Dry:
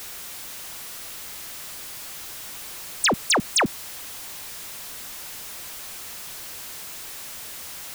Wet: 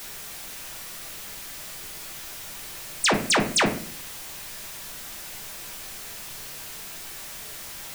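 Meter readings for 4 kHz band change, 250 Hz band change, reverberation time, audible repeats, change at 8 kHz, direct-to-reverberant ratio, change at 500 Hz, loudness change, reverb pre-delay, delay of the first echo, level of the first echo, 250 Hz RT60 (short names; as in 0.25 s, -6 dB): -1.0 dB, +1.5 dB, 0.45 s, none, -1.5 dB, 1.5 dB, +1.0 dB, -0.5 dB, 5 ms, none, none, 0.75 s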